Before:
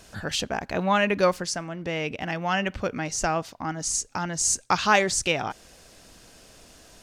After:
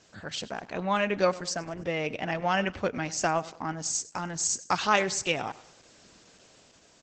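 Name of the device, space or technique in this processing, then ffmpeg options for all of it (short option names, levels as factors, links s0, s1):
video call: -filter_complex "[0:a]aecho=1:1:100|200|300:0.119|0.0475|0.019,asettb=1/sr,asplit=3[s0][s1][s2];[s0]atrim=end=1.414[s3];[s1]atrim=start=1.41:end=2.61,asetpts=PTS-STARTPTS,afade=t=in:d=0.004:c=qsin,afade=t=out:st=1.196:d=0.004:c=qsin,adynamicequalizer=threshold=0.00631:dfrequency=570:dqfactor=1.9:tfrequency=570:tqfactor=1.9:attack=5:release=100:ratio=0.375:range=2:mode=boostabove:tftype=bell[s4];[s2]atrim=start=2.606[s5];[s3][s4]acrossfade=d=0.004:c1=hsin:c2=qsin[s6];[s6][s5]acrossfade=d=0.004:c1=qsin:c2=hsin,highpass=110,dynaudnorm=f=230:g=9:m=2,volume=0.473" -ar 48000 -c:a libopus -b:a 12k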